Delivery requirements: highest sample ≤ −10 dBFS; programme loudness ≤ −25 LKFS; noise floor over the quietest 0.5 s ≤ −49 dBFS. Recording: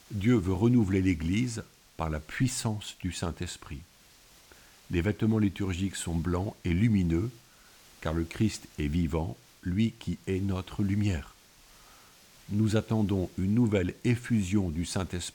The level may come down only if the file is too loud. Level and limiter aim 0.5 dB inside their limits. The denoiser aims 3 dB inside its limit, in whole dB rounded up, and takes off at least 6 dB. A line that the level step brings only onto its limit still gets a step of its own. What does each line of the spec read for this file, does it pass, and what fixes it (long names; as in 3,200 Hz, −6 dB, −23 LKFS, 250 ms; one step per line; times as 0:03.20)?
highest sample −13.0 dBFS: in spec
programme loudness −29.5 LKFS: in spec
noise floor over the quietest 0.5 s −58 dBFS: in spec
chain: no processing needed